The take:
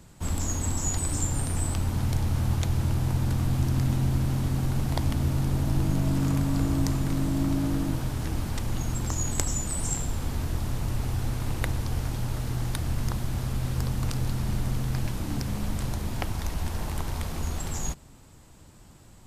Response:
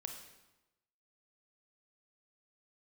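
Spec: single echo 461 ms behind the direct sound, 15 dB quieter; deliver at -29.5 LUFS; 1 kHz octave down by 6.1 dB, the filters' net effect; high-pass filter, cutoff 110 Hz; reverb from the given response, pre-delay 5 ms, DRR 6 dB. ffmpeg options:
-filter_complex "[0:a]highpass=110,equalizer=f=1000:t=o:g=-8,aecho=1:1:461:0.178,asplit=2[s0][s1];[1:a]atrim=start_sample=2205,adelay=5[s2];[s1][s2]afir=irnorm=-1:irlink=0,volume=0.668[s3];[s0][s3]amix=inputs=2:normalize=0,volume=1.19"

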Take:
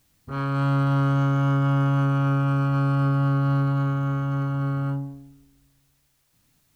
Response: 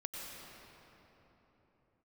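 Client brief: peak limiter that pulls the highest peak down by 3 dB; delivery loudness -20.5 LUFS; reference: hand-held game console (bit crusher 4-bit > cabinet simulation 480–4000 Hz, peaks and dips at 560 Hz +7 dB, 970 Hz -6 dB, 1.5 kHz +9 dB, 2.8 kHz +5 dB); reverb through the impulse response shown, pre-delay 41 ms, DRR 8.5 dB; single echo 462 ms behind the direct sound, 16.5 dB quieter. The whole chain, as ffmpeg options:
-filter_complex "[0:a]alimiter=limit=0.15:level=0:latency=1,aecho=1:1:462:0.15,asplit=2[s0][s1];[1:a]atrim=start_sample=2205,adelay=41[s2];[s1][s2]afir=irnorm=-1:irlink=0,volume=0.376[s3];[s0][s3]amix=inputs=2:normalize=0,acrusher=bits=3:mix=0:aa=0.000001,highpass=480,equalizer=f=560:t=q:w=4:g=7,equalizer=f=970:t=q:w=4:g=-6,equalizer=f=1500:t=q:w=4:g=9,equalizer=f=2800:t=q:w=4:g=5,lowpass=f=4000:w=0.5412,lowpass=f=4000:w=1.3066,volume=1.19"

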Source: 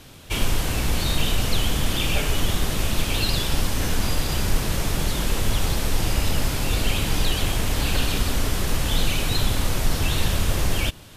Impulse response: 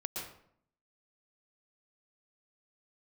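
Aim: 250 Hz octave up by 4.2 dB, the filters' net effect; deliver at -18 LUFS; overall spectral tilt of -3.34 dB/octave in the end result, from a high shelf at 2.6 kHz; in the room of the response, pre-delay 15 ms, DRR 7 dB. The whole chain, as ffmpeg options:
-filter_complex "[0:a]equalizer=f=250:t=o:g=5.5,highshelf=f=2600:g=6,asplit=2[s0][s1];[1:a]atrim=start_sample=2205,adelay=15[s2];[s1][s2]afir=irnorm=-1:irlink=0,volume=0.376[s3];[s0][s3]amix=inputs=2:normalize=0,volume=1.33"

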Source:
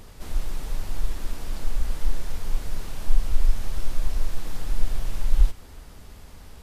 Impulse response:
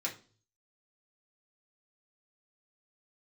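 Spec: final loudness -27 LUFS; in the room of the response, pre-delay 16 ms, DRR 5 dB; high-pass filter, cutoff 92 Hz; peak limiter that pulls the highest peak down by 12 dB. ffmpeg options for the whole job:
-filter_complex "[0:a]highpass=92,alimiter=level_in=2.51:limit=0.0631:level=0:latency=1,volume=0.398,asplit=2[s0][s1];[1:a]atrim=start_sample=2205,adelay=16[s2];[s1][s2]afir=irnorm=-1:irlink=0,volume=0.398[s3];[s0][s3]amix=inputs=2:normalize=0,volume=5.62"

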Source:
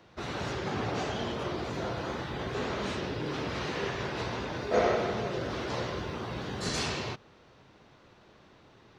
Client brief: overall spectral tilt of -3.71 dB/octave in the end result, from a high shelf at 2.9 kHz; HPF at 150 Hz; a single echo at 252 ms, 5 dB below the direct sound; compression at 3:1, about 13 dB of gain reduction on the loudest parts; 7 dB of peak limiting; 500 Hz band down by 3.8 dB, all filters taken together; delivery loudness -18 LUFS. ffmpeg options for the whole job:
-af "highpass=150,equalizer=f=500:t=o:g=-5,highshelf=f=2900:g=4.5,acompressor=threshold=0.00794:ratio=3,alimiter=level_in=3.55:limit=0.0631:level=0:latency=1,volume=0.282,aecho=1:1:252:0.562,volume=17.8"

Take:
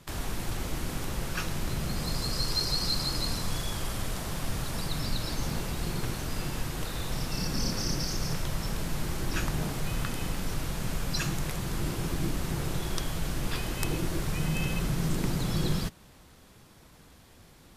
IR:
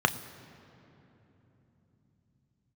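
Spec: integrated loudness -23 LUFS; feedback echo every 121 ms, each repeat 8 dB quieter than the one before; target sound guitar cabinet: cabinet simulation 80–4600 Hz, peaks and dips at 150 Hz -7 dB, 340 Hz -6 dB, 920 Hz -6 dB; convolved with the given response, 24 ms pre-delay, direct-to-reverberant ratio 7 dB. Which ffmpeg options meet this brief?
-filter_complex "[0:a]aecho=1:1:121|242|363|484|605:0.398|0.159|0.0637|0.0255|0.0102,asplit=2[s0][s1];[1:a]atrim=start_sample=2205,adelay=24[s2];[s1][s2]afir=irnorm=-1:irlink=0,volume=0.1[s3];[s0][s3]amix=inputs=2:normalize=0,highpass=80,equalizer=f=150:t=q:w=4:g=-7,equalizer=f=340:t=q:w=4:g=-6,equalizer=f=920:t=q:w=4:g=-6,lowpass=f=4600:w=0.5412,lowpass=f=4600:w=1.3066,volume=3.76"

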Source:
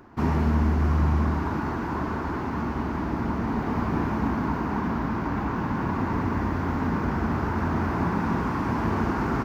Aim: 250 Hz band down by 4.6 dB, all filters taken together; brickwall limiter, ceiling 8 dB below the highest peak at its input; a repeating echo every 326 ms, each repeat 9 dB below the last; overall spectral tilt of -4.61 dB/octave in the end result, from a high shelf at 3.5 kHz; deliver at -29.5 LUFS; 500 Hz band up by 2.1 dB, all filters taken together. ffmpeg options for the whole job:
-af "equalizer=f=250:t=o:g=-7.5,equalizer=f=500:t=o:g=6,highshelf=f=3500:g=-5,alimiter=limit=0.0944:level=0:latency=1,aecho=1:1:326|652|978|1304:0.355|0.124|0.0435|0.0152"

